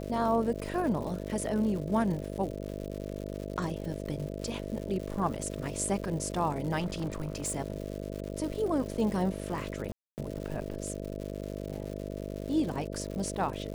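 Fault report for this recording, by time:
buzz 50 Hz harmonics 13 -38 dBFS
crackle 220/s -38 dBFS
1.29 gap 3.2 ms
6.79–7.52 clipped -28.5 dBFS
9.92–10.18 gap 0.259 s

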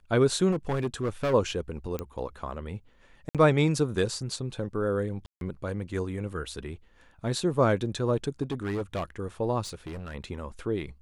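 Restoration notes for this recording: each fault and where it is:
0.51–1.34 clipped -23.5 dBFS
1.99 pop -18 dBFS
3.29–3.35 gap 57 ms
5.26–5.41 gap 0.152 s
8.42–9.04 clipped -26.5 dBFS
9.63–10.15 clipped -34 dBFS

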